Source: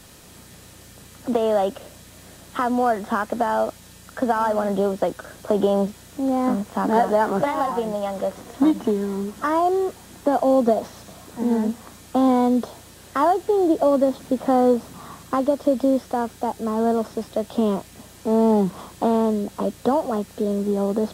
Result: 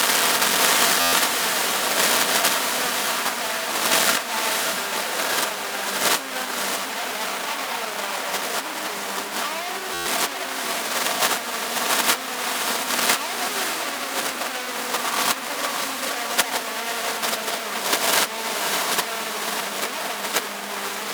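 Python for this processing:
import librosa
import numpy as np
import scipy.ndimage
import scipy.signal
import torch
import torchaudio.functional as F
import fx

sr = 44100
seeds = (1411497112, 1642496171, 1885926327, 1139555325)

p1 = fx.bin_compress(x, sr, power=0.6)
p2 = fx.room_shoebox(p1, sr, seeds[0], volume_m3=3400.0, walls='furnished', distance_m=1.7)
p3 = fx.fuzz(p2, sr, gain_db=34.0, gate_db=-33.0)
p4 = fx.over_compress(p3, sr, threshold_db=-19.0, ratio=-0.5)
p5 = fx.highpass(p4, sr, hz=280.0, slope=6)
p6 = fx.tilt_shelf(p5, sr, db=-9.5, hz=700.0)
p7 = p6 + fx.echo_diffused(p6, sr, ms=588, feedback_pct=52, wet_db=-4, dry=0)
p8 = fx.transient(p7, sr, attack_db=7, sustain_db=-2)
p9 = fx.buffer_glitch(p8, sr, at_s=(1.0, 9.93), block=512, repeats=10)
y = F.gain(torch.from_numpy(p9), -7.5).numpy()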